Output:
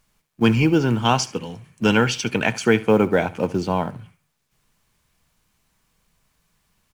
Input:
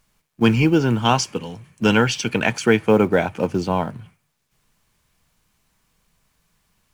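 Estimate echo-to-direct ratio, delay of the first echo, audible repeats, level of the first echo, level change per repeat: -19.0 dB, 71 ms, 2, -19.0 dB, -12.5 dB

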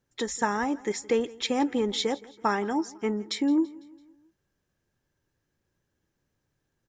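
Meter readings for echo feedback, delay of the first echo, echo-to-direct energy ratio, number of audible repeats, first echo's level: 51%, 167 ms, -20.5 dB, 3, -22.0 dB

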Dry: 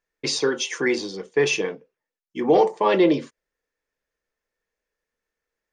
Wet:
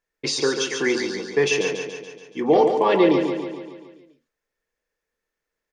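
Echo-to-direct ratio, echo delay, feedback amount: -5.0 dB, 142 ms, 56%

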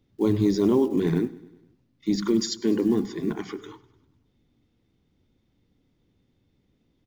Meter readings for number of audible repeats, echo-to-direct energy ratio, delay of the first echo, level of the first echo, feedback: 4, -18.5 dB, 100 ms, -20.0 dB, 57%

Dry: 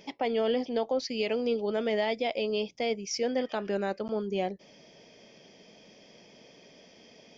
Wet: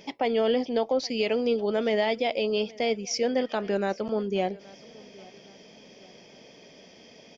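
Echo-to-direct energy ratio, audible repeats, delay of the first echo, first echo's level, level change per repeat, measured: -22.0 dB, 2, 823 ms, -23.0 dB, -7.0 dB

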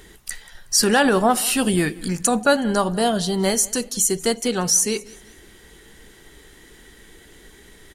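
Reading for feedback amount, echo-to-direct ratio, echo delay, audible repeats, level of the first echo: 36%, -21.5 dB, 185 ms, 2, -22.0 dB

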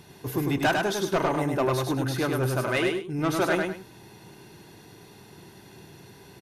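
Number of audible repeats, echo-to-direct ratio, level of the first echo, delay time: 2, -3.0 dB, -3.5 dB, 101 ms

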